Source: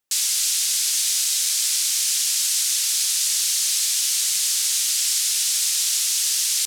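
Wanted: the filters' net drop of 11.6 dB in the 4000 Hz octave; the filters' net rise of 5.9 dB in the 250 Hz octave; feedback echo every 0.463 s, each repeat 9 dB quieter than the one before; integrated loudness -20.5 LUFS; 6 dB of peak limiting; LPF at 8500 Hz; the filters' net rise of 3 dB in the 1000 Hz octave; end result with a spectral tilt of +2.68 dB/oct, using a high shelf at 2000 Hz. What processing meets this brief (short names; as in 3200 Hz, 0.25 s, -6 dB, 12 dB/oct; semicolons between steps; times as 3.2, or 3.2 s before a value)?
LPF 8500 Hz; bell 250 Hz +8 dB; bell 1000 Hz +7 dB; high shelf 2000 Hz -9 dB; bell 4000 Hz -5.5 dB; limiter -26 dBFS; feedback echo 0.463 s, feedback 35%, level -9 dB; gain +12 dB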